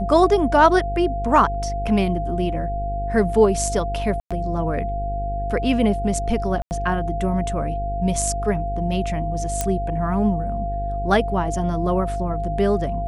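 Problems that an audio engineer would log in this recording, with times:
mains buzz 50 Hz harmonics 10 −27 dBFS
whistle 690 Hz −26 dBFS
0:04.20–0:04.31: drop-out 106 ms
0:06.62–0:06.71: drop-out 89 ms
0:09.61: click −7 dBFS

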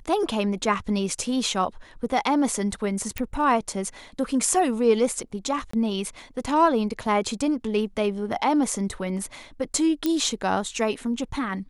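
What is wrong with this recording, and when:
0:03.18: click
0:05.71–0:05.73: drop-out 24 ms
0:10.06: click −11 dBFS

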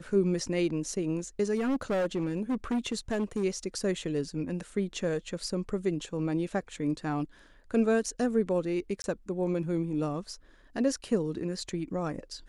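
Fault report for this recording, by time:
0:01.55–0:03.44: clipping −25 dBFS
0:09.02–0:09.04: drop-out 21 ms

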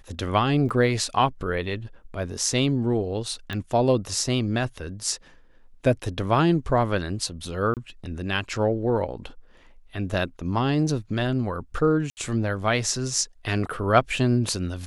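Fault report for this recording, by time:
0:00.69: drop-out 2.7 ms
0:03.53: click −17 dBFS
0:07.74–0:07.77: drop-out 28 ms
0:12.10–0:12.17: drop-out 69 ms

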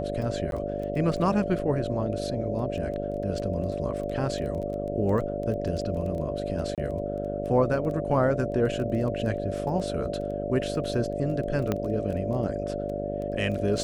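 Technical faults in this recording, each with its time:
mains buzz 50 Hz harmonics 14 −33 dBFS
surface crackle 11 per second −33 dBFS
whistle 580 Hz −32 dBFS
0:00.51–0:00.52: drop-out 12 ms
0:06.75–0:06.78: drop-out 27 ms
0:11.72: click −13 dBFS

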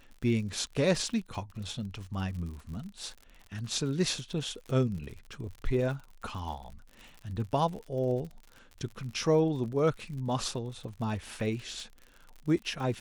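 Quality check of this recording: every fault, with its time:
surface crackle 60 per second −40 dBFS

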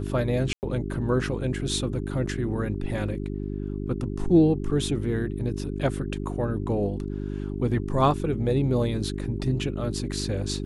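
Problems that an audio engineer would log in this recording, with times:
mains hum 50 Hz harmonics 8 −31 dBFS
0:00.53–0:00.63: drop-out 99 ms

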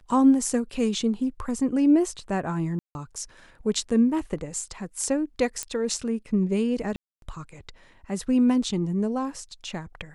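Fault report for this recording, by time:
0:02.79–0:02.95: drop-out 161 ms
0:05.63: click −13 dBFS
0:06.96–0:07.22: drop-out 262 ms

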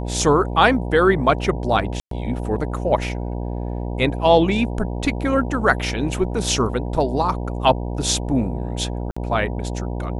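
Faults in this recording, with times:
mains buzz 60 Hz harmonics 16 −26 dBFS
0:02.00–0:02.11: drop-out 113 ms
0:09.11–0:09.16: drop-out 55 ms

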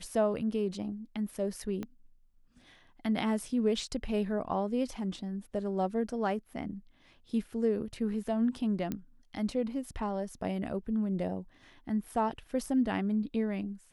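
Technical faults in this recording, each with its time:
0:01.83: click −25 dBFS
0:08.92: click −21 dBFS

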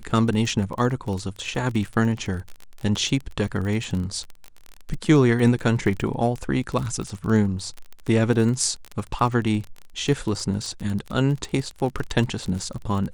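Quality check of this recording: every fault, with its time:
surface crackle 27 per second −27 dBFS

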